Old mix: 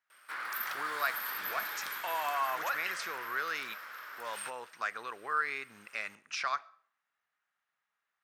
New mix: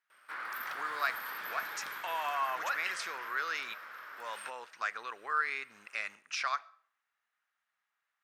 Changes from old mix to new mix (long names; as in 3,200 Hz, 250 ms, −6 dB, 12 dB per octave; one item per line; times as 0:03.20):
speech: add spectral tilt +3 dB per octave
master: add high-shelf EQ 3,500 Hz −9 dB